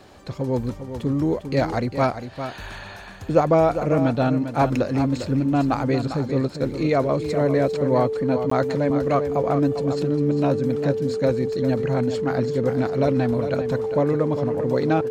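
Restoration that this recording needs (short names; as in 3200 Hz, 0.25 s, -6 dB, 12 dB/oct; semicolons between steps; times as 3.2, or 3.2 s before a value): notch 440 Hz, Q 30; interpolate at 8.5, 14 ms; inverse comb 0.401 s -9.5 dB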